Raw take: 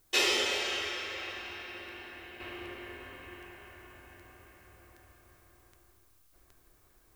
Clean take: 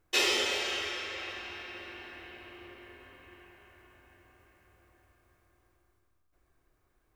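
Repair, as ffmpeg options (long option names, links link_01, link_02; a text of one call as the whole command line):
ffmpeg -i in.wav -af "adeclick=threshold=4,agate=range=-21dB:threshold=-56dB,asetnsamples=nb_out_samples=441:pad=0,asendcmd='2.4 volume volume -6.5dB',volume=0dB" out.wav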